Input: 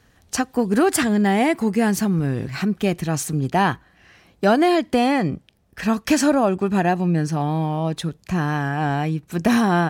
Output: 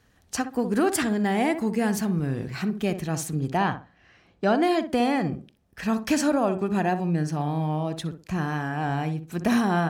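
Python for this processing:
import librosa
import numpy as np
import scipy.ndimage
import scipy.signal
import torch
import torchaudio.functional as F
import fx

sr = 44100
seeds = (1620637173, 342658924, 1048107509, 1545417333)

p1 = fx.air_absorb(x, sr, metres=73.0, at=(3.57, 4.63))
p2 = p1 + fx.echo_tape(p1, sr, ms=62, feedback_pct=30, wet_db=-7.5, lp_hz=1100.0, drive_db=4.0, wow_cents=30, dry=0)
y = p2 * 10.0 ** (-5.5 / 20.0)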